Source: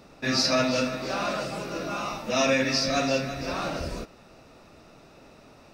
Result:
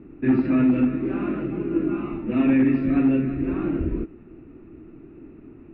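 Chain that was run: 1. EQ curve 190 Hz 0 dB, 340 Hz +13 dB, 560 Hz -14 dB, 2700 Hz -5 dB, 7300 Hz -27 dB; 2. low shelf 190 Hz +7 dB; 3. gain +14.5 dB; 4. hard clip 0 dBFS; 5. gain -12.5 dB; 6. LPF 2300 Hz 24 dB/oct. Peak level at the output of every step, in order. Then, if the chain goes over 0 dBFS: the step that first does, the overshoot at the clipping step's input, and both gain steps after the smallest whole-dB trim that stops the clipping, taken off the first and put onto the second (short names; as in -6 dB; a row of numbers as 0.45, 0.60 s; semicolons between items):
-12.5, -10.5, +4.0, 0.0, -12.5, -12.0 dBFS; step 3, 4.0 dB; step 3 +10.5 dB, step 5 -8.5 dB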